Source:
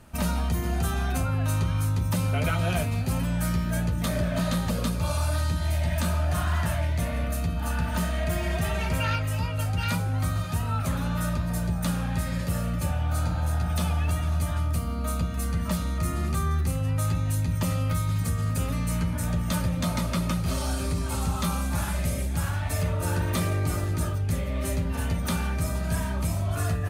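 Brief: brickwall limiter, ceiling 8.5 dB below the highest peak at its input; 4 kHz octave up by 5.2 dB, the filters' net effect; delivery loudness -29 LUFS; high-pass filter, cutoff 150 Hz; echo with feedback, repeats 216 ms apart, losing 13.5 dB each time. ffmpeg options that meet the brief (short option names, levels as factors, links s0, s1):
-af "highpass=150,equalizer=f=4000:t=o:g=6.5,alimiter=limit=0.075:level=0:latency=1,aecho=1:1:216|432:0.211|0.0444,volume=1.41"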